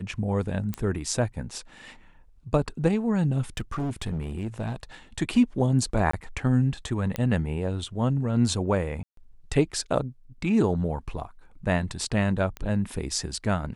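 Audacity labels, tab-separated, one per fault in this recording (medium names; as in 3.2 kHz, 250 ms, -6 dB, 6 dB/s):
0.740000	0.740000	pop -15 dBFS
3.570000	4.830000	clipped -25.5 dBFS
6.110000	6.130000	dropout 24 ms
7.160000	7.160000	pop -14 dBFS
9.030000	9.170000	dropout 143 ms
12.570000	12.570000	pop -21 dBFS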